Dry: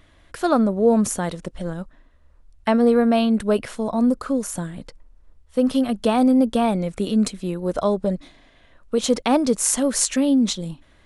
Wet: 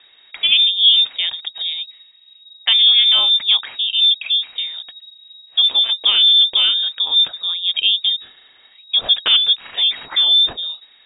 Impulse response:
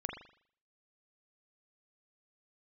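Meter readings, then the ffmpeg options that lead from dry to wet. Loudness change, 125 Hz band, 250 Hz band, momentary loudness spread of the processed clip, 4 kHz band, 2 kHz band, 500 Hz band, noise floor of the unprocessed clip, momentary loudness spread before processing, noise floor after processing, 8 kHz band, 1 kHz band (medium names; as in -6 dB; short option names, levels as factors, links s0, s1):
+7.5 dB, under -20 dB, under -30 dB, 14 LU, +25.0 dB, +7.5 dB, under -20 dB, -55 dBFS, 14 LU, -50 dBFS, under -40 dB, -10.0 dB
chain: -af "lowpass=f=3200:t=q:w=0.5098,lowpass=f=3200:t=q:w=0.6013,lowpass=f=3200:t=q:w=0.9,lowpass=f=3200:t=q:w=2.563,afreqshift=-3800,volume=1.58"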